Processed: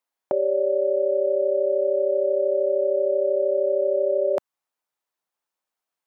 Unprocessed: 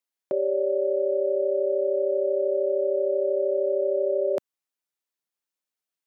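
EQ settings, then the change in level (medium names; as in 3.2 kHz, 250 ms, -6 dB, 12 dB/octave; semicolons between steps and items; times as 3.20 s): dynamic bell 520 Hz, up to -4 dB, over -37 dBFS, Q 0.73; peaking EQ 880 Hz +10.5 dB 1.8 oct; 0.0 dB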